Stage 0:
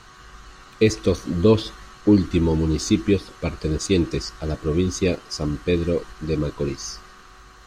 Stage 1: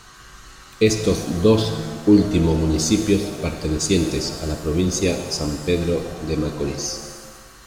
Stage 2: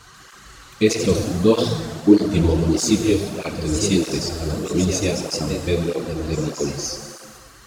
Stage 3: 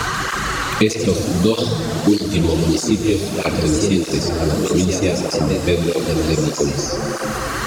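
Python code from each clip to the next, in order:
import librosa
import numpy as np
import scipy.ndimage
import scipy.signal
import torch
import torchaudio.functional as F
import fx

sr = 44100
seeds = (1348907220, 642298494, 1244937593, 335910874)

y1 = fx.high_shelf(x, sr, hz=6600.0, db=12.0)
y1 = fx.rev_shimmer(y1, sr, seeds[0], rt60_s=1.5, semitones=7, shimmer_db=-8, drr_db=6.0)
y2 = fx.echo_pitch(y1, sr, ms=140, semitones=1, count=2, db_per_echo=-6.0)
y2 = fx.flanger_cancel(y2, sr, hz=1.6, depth_ms=5.8)
y2 = y2 * librosa.db_to_amplitude(2.0)
y3 = fx.band_squash(y2, sr, depth_pct=100)
y3 = y3 * librosa.db_to_amplitude(2.0)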